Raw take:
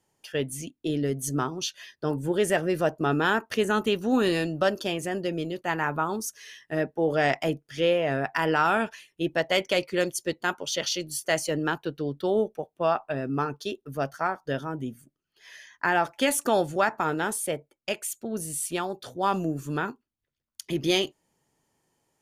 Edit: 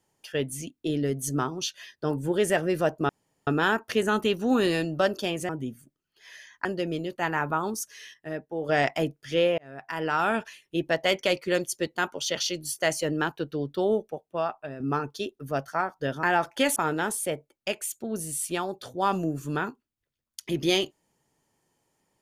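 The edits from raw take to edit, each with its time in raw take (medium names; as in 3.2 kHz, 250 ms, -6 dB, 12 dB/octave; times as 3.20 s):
3.09 s: insert room tone 0.38 s
6.60–7.15 s: gain -7 dB
8.04–8.86 s: fade in
12.32–13.26 s: fade out linear, to -9 dB
14.69–15.85 s: move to 5.11 s
16.38–16.97 s: delete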